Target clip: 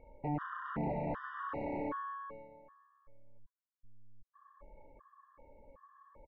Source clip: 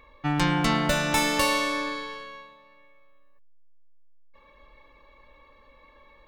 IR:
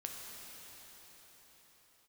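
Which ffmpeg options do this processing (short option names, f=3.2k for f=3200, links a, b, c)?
-filter_complex "[0:a]equalizer=f=160:t=o:w=0.7:g=3.5,acompressor=threshold=-26dB:ratio=20,bandreject=f=50:t=h:w=6,bandreject=f=100:t=h:w=6,bandreject=f=150:t=h:w=6,bandreject=f=200:t=h:w=6,bandreject=f=250:t=h:w=6,bandreject=f=300:t=h:w=6,bandreject=f=350:t=h:w=6,asplit=4[a][b][c][d];[b]adelay=110,afreqshift=-110,volume=-20dB[e];[c]adelay=220,afreqshift=-220,volume=-29.9dB[f];[d]adelay=330,afreqshift=-330,volume=-39.8dB[g];[a][e][f][g]amix=inputs=4:normalize=0,acontrast=43,aeval=exprs='(mod(8.91*val(0)+1,2)-1)/8.91':c=same,lowpass=f=1.4k:w=0.5412,lowpass=f=1.4k:w=1.3066,afftfilt=real='re*gt(sin(2*PI*1.3*pts/sr)*(1-2*mod(floor(b*sr/1024/950),2)),0)':imag='im*gt(sin(2*PI*1.3*pts/sr)*(1-2*mod(floor(b*sr/1024/950),2)),0)':win_size=1024:overlap=0.75,volume=-6dB"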